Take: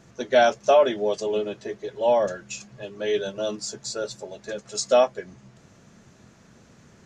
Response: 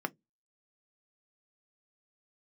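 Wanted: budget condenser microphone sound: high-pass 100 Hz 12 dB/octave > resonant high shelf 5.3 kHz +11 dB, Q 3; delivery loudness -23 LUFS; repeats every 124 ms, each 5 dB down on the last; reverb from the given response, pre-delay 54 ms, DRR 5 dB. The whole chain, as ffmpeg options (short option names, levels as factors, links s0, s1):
-filter_complex "[0:a]aecho=1:1:124|248|372|496|620|744|868:0.562|0.315|0.176|0.0988|0.0553|0.031|0.0173,asplit=2[s0][s1];[1:a]atrim=start_sample=2205,adelay=54[s2];[s1][s2]afir=irnorm=-1:irlink=0,volume=0.335[s3];[s0][s3]amix=inputs=2:normalize=0,highpass=100,highshelf=f=5300:t=q:w=3:g=11,volume=0.668"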